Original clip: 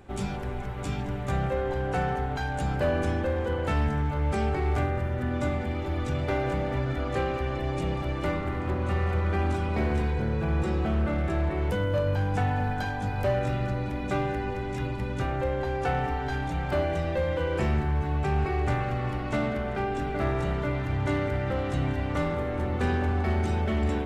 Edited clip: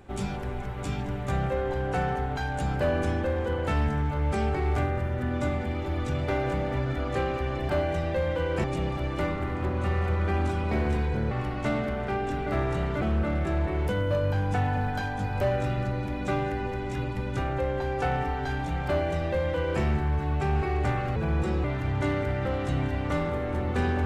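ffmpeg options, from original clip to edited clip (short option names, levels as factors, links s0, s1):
-filter_complex "[0:a]asplit=7[s0][s1][s2][s3][s4][s5][s6];[s0]atrim=end=7.692[s7];[s1]atrim=start=16.698:end=17.652[s8];[s2]atrim=start=7.688:end=10.362[s9];[s3]atrim=start=18.988:end=20.692[s10];[s4]atrim=start=10.838:end=18.992[s11];[s5]atrim=start=10.358:end=10.842[s12];[s6]atrim=start=20.688[s13];[s7][s8]acrossfade=d=0.004:c1=hsin:c2=hsin[s14];[s14][s9]acrossfade=d=0.004:c1=hsin:c2=hsin[s15];[s15][s10]acrossfade=d=0.004:c1=hsin:c2=hsin[s16];[s16][s11]acrossfade=d=0.004:c1=hsin:c2=hsin[s17];[s17][s12]acrossfade=d=0.004:c1=hsin:c2=hsin[s18];[s18][s13]acrossfade=d=0.004:c1=hsin:c2=hsin"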